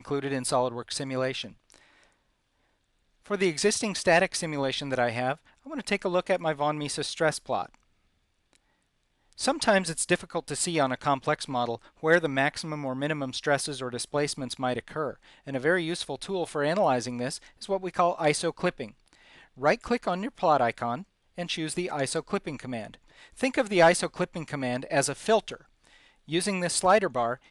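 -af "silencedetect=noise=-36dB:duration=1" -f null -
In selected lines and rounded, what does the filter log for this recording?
silence_start: 1.76
silence_end: 3.26 | silence_duration: 1.50
silence_start: 7.66
silence_end: 9.39 | silence_duration: 1.73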